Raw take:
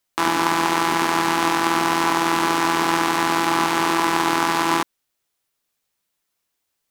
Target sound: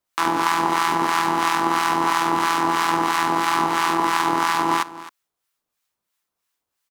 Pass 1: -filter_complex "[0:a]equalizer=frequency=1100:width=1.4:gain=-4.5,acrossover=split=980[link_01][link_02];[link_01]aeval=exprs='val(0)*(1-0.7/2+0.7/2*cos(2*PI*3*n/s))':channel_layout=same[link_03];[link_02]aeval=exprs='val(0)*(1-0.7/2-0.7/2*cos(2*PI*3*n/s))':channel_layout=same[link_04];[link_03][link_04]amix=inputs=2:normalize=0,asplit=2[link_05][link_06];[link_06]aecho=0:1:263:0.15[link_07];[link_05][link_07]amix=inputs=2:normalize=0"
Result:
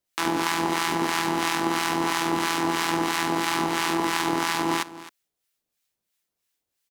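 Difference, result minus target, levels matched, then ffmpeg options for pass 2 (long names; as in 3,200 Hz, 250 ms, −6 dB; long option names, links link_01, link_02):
1,000 Hz band −3.0 dB
-filter_complex "[0:a]equalizer=frequency=1100:width=1.4:gain=4.5,acrossover=split=980[link_01][link_02];[link_01]aeval=exprs='val(0)*(1-0.7/2+0.7/2*cos(2*PI*3*n/s))':channel_layout=same[link_03];[link_02]aeval=exprs='val(0)*(1-0.7/2-0.7/2*cos(2*PI*3*n/s))':channel_layout=same[link_04];[link_03][link_04]amix=inputs=2:normalize=0,asplit=2[link_05][link_06];[link_06]aecho=0:1:263:0.15[link_07];[link_05][link_07]amix=inputs=2:normalize=0"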